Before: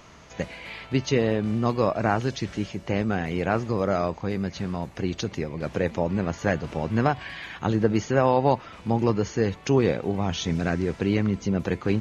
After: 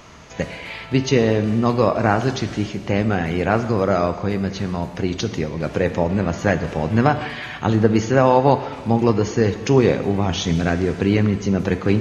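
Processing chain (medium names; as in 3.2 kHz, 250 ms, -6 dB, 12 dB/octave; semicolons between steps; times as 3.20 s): plate-style reverb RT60 1.4 s, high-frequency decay 0.95×, DRR 9.5 dB; trim +5.5 dB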